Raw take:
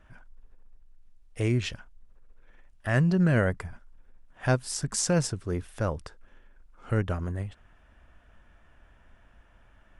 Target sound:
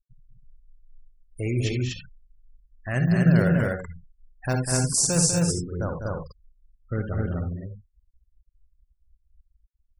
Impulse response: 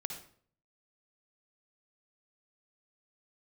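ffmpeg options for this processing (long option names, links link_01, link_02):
-filter_complex "[0:a]asplit=2[link_01][link_02];[link_02]acrusher=samples=19:mix=1:aa=0.000001:lfo=1:lforange=19:lforate=0.48,volume=-10dB[link_03];[link_01][link_03]amix=inputs=2:normalize=0[link_04];[1:a]atrim=start_sample=2205,atrim=end_sample=4410[link_05];[link_04][link_05]afir=irnorm=-1:irlink=0,crystalizer=i=2.5:c=0,afftfilt=real='re*gte(hypot(re,im),0.0316)':imag='im*gte(hypot(re,im),0.0316)':win_size=1024:overlap=0.75,aecho=1:1:198.3|244.9:0.447|0.794,volume=-2.5dB"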